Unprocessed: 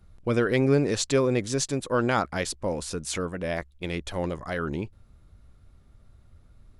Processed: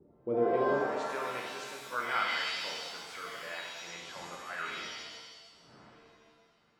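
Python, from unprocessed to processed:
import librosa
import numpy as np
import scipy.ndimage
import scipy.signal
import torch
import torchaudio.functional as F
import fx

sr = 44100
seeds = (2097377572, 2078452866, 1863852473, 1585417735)

y = fx.dmg_wind(x, sr, seeds[0], corner_hz=200.0, level_db=-41.0)
y = fx.filter_sweep_bandpass(y, sr, from_hz=390.0, to_hz=1400.0, start_s=0.47, end_s=1.13, q=2.2)
y = fx.rev_shimmer(y, sr, seeds[1], rt60_s=1.3, semitones=7, shimmer_db=-2, drr_db=-1.0)
y = F.gain(torch.from_numpy(y), -5.5).numpy()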